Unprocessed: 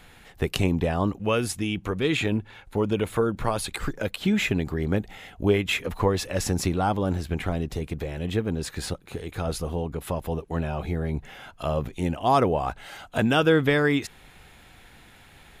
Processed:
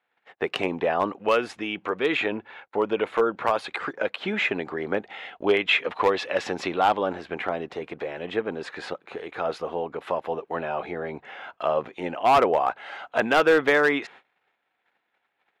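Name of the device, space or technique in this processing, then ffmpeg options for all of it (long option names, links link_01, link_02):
walkie-talkie: -filter_complex "[0:a]highpass=490,lowpass=2300,asoftclip=type=hard:threshold=-18.5dB,agate=range=-27dB:threshold=-52dB:ratio=16:detection=peak,asettb=1/sr,asplit=3[link_01][link_02][link_03];[link_01]atrim=end=5.104[link_04];[link_02]atrim=start=5.1:end=7.08,asetpts=PTS-STARTPTS,afade=type=in:duration=0.004:curve=qsin,afade=type=out:start_time=1.976:duration=0.004:curve=qsin,equalizer=frequency=3400:width_type=o:width=1.1:gain=5.5[link_05];[link_03]atrim=start=7.076[link_06];[link_04][link_05]acrossfade=duration=0.004:curve1=hsin:curve2=qsin[link_07];[link_07][link_06]acrossfade=duration=0.004:curve1=qsin:curve2=hsin,volume=6dB"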